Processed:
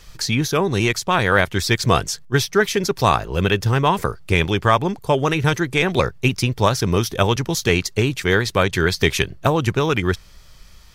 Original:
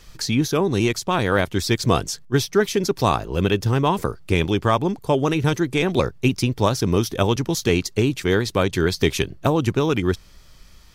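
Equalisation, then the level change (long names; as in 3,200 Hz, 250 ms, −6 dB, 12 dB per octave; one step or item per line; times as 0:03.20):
parametric band 280 Hz −5.5 dB 0.91 octaves
dynamic equaliser 1,800 Hz, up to +5 dB, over −36 dBFS, Q 1.3
+2.5 dB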